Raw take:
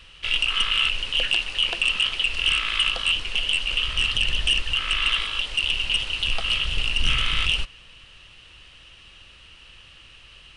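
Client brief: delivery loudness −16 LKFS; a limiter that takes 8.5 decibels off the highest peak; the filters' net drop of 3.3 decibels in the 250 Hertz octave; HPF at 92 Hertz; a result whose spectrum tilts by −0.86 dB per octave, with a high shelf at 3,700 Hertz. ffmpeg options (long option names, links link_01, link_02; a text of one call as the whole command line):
ffmpeg -i in.wav -af "highpass=92,equalizer=frequency=250:width_type=o:gain=-4.5,highshelf=frequency=3700:gain=-5,volume=12dB,alimiter=limit=-8dB:level=0:latency=1" out.wav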